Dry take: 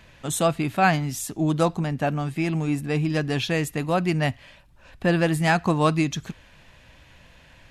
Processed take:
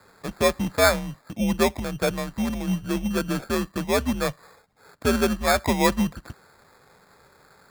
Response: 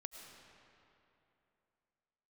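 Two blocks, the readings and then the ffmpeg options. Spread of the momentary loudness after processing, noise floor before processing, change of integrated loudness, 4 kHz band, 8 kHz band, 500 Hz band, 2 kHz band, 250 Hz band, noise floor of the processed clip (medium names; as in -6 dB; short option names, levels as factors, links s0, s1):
8 LU, -53 dBFS, -0.5 dB, +2.0 dB, +1.0 dB, +1.5 dB, -1.0 dB, -0.5 dB, -57 dBFS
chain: -af "highpass=f=220:t=q:w=0.5412,highpass=f=220:t=q:w=1.307,lowpass=f=2100:t=q:w=0.5176,lowpass=f=2100:t=q:w=0.7071,lowpass=f=2100:t=q:w=1.932,afreqshift=-110,acrusher=samples=15:mix=1:aa=0.000001,volume=1.19"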